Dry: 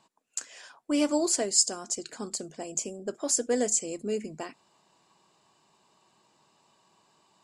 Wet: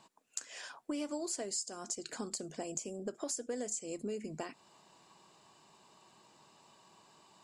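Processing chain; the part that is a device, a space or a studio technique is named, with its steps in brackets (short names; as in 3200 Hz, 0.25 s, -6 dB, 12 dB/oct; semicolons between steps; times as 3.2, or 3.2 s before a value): serial compression, peaks first (compressor 5:1, threshold -34 dBFS, peak gain reduction 15 dB; compressor 1.5:1, threshold -47 dBFS, peak gain reduction 6 dB); gain +3 dB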